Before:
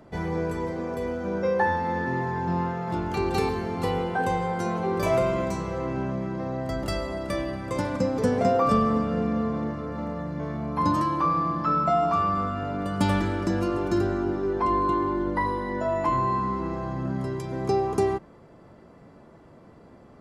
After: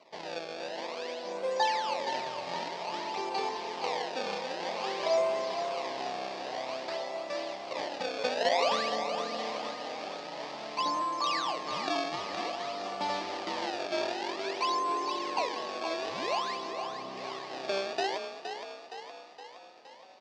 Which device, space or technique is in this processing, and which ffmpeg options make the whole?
circuit-bent sampling toy: -filter_complex "[0:a]acrusher=samples=25:mix=1:aa=0.000001:lfo=1:lforange=40:lforate=0.52,highpass=570,equalizer=f=630:t=q:w=4:g=4,equalizer=f=900:t=q:w=4:g=3,equalizer=f=1400:t=q:w=4:g=-10,equalizer=f=4700:t=q:w=4:g=5,lowpass=f=5400:w=0.5412,lowpass=f=5400:w=1.3066,asettb=1/sr,asplit=3[s0][s1][s2];[s0]atrim=end=16.714[s3];[s1]atrim=start=16.71:end=17.17,asetpts=PTS-STARTPTS,afade=t=in:d=0.004:c=qsin,afade=t=out:st=0.456:d=0.004:c=qsin,lowpass=2200[s4];[s2]atrim=start=17.166[s5];[s3][s4]acrossfade=d=0.004:c1=hsin:c2=qsin[s6];[s6][s5]acrossfade=d=0.004:c1=qsin:c2=hsin,asplit=8[s7][s8][s9][s10][s11][s12][s13][s14];[s8]adelay=467,afreqshift=32,volume=0.398[s15];[s9]adelay=934,afreqshift=64,volume=0.234[s16];[s10]adelay=1401,afreqshift=96,volume=0.138[s17];[s11]adelay=1868,afreqshift=128,volume=0.0822[s18];[s12]adelay=2335,afreqshift=160,volume=0.0484[s19];[s13]adelay=2802,afreqshift=192,volume=0.0285[s20];[s14]adelay=3269,afreqshift=224,volume=0.0168[s21];[s7][s15][s16][s17][s18][s19][s20][s21]amix=inputs=8:normalize=0,volume=0.596"

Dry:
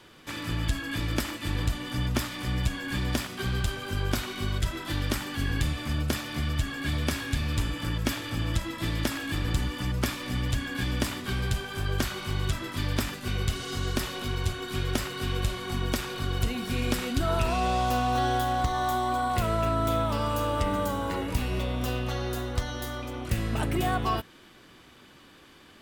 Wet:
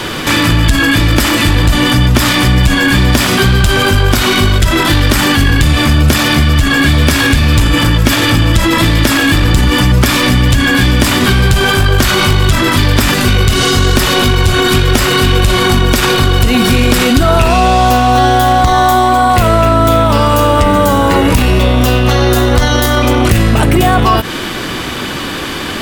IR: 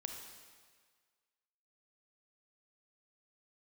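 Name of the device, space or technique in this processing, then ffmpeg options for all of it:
loud club master: -af "acompressor=threshold=0.0316:ratio=3,asoftclip=type=hard:threshold=0.0562,alimiter=level_in=56.2:limit=0.891:release=50:level=0:latency=1,volume=0.891"

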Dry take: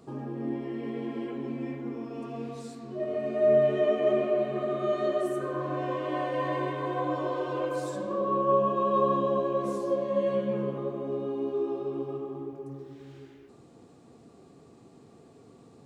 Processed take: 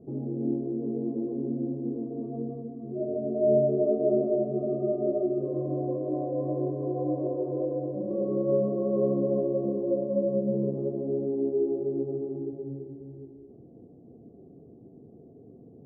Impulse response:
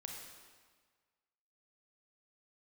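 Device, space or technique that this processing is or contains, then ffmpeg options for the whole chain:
under water: -af "lowpass=f=460:w=0.5412,lowpass=f=460:w=1.3066,equalizer=f=700:t=o:w=0.51:g=8,volume=1.58"

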